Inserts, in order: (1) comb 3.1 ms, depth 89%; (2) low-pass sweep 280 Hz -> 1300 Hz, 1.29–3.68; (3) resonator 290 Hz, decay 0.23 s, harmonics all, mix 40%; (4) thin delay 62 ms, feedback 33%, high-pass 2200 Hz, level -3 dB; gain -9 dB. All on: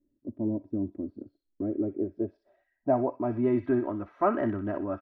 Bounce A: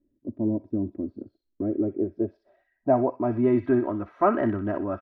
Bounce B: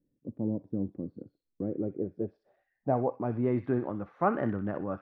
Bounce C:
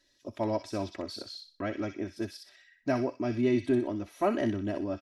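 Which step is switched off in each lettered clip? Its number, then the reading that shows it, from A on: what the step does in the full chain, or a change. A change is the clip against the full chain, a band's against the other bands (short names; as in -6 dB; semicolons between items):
3, loudness change +4.0 LU; 1, 125 Hz band +4.5 dB; 2, 2 kHz band +5.5 dB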